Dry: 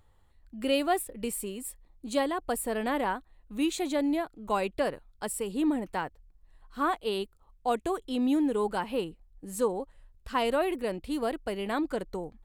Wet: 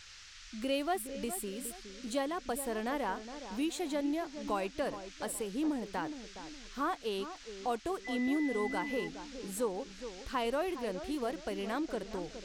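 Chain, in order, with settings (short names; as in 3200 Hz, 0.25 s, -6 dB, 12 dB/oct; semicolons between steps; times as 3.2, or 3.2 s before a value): band noise 1300–6400 Hz -52 dBFS; in parallel at +2 dB: compressor, threshold -37 dBFS, peak gain reduction 14.5 dB; on the sum: darkening echo 0.416 s, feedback 39%, low-pass 1200 Hz, level -10 dB; 8.04–9.06 whine 2000 Hz -32 dBFS; gain -8.5 dB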